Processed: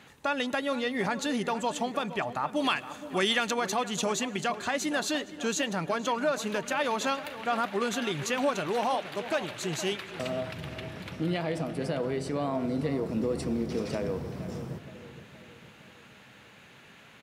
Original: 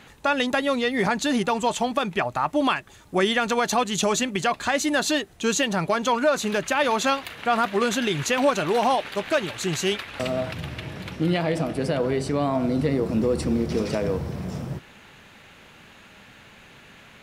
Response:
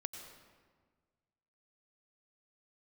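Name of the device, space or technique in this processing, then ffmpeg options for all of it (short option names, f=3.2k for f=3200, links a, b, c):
compressed reverb return: -filter_complex "[0:a]asplit=2[a][b];[1:a]atrim=start_sample=2205[c];[b][c]afir=irnorm=-1:irlink=0,acompressor=threshold=-32dB:ratio=6,volume=-4.5dB[d];[a][d]amix=inputs=2:normalize=0,highpass=86,asplit=2[e][f];[f]adelay=467,lowpass=f=2.6k:p=1,volume=-13dB,asplit=2[g][h];[h]adelay=467,lowpass=f=2.6k:p=1,volume=0.52,asplit=2[i][j];[j]adelay=467,lowpass=f=2.6k:p=1,volume=0.52,asplit=2[k][l];[l]adelay=467,lowpass=f=2.6k:p=1,volume=0.52,asplit=2[m][n];[n]adelay=467,lowpass=f=2.6k:p=1,volume=0.52[o];[e][g][i][k][m][o]amix=inputs=6:normalize=0,asplit=3[p][q][r];[p]afade=t=out:st=2.55:d=0.02[s];[q]adynamicequalizer=threshold=0.0178:dfrequency=1800:dqfactor=0.7:tfrequency=1800:tqfactor=0.7:attack=5:release=100:ratio=0.375:range=3.5:mode=boostabove:tftype=highshelf,afade=t=in:st=2.55:d=0.02,afade=t=out:st=3.5:d=0.02[t];[r]afade=t=in:st=3.5:d=0.02[u];[s][t][u]amix=inputs=3:normalize=0,volume=-8dB"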